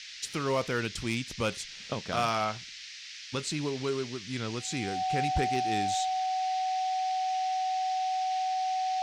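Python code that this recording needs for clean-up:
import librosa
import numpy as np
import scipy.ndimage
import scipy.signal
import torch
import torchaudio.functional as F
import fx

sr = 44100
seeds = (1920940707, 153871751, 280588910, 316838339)

y = fx.fix_declip(x, sr, threshold_db=-20.0)
y = fx.notch(y, sr, hz=750.0, q=30.0)
y = fx.noise_reduce(y, sr, print_start_s=2.61, print_end_s=3.11, reduce_db=30.0)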